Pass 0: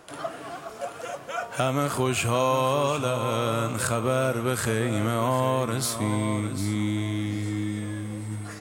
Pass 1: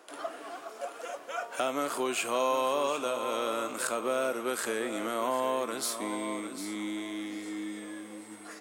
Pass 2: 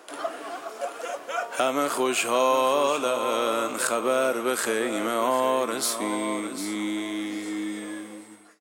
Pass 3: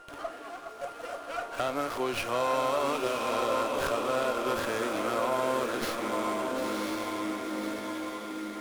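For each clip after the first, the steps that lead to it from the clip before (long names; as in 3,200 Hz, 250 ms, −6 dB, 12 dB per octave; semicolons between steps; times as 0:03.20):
high-pass filter 270 Hz 24 dB per octave; level −4.5 dB
fade-out on the ending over 0.67 s; level +6.5 dB
steady tone 1,400 Hz −43 dBFS; feedback delay with all-pass diffusion 1,028 ms, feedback 53%, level −3 dB; windowed peak hold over 5 samples; level −6.5 dB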